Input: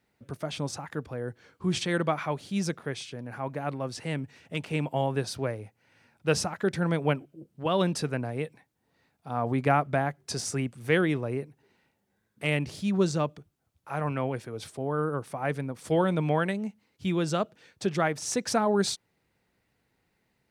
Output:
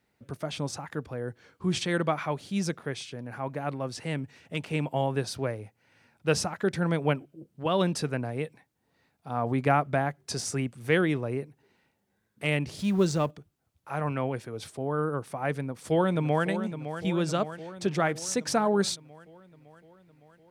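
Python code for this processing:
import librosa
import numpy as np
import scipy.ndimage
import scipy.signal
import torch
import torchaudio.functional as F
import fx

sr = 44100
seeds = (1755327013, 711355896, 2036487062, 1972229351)

y = fx.law_mismatch(x, sr, coded='mu', at=(12.79, 13.31))
y = fx.echo_throw(y, sr, start_s=15.59, length_s=0.88, ms=560, feedback_pct=65, wet_db=-10.0)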